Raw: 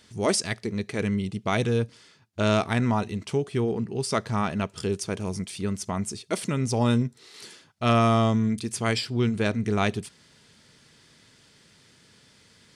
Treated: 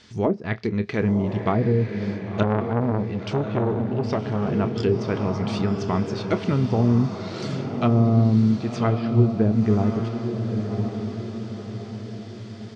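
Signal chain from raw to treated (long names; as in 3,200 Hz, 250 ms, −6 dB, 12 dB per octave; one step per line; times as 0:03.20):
treble cut that deepens with the level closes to 370 Hz, closed at −19 dBFS
low-pass filter 6,400 Hz 24 dB per octave
parametric band 560 Hz −3 dB 0.23 octaves
double-tracking delay 28 ms −13 dB
feedback delay with all-pass diffusion 1,080 ms, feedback 46%, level −6 dB
0:02.43–0:04.52: saturating transformer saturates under 670 Hz
level +5 dB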